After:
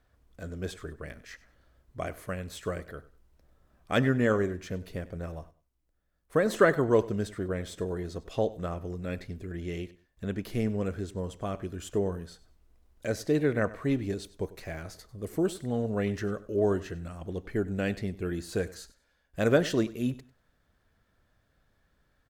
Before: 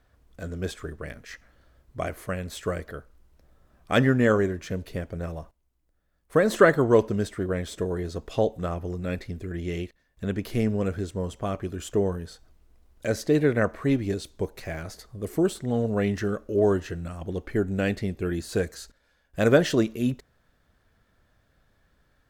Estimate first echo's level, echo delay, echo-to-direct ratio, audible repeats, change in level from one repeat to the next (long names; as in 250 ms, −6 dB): −18.5 dB, 97 ms, −18.5 dB, 2, −13.0 dB